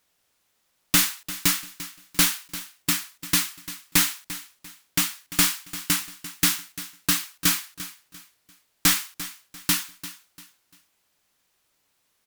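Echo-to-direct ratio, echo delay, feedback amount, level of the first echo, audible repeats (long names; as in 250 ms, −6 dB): −14.5 dB, 345 ms, 32%, −15.0 dB, 3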